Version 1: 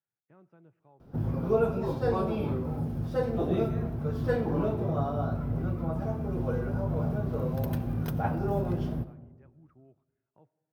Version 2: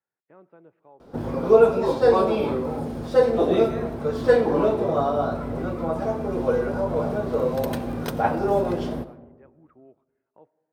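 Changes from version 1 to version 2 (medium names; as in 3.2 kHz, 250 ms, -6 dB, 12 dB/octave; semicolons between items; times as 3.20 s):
speech: add distance through air 350 m; master: add ten-band graphic EQ 125 Hz -7 dB, 250 Hz +5 dB, 500 Hz +10 dB, 1 kHz +7 dB, 2 kHz +7 dB, 4 kHz +9 dB, 8 kHz +12 dB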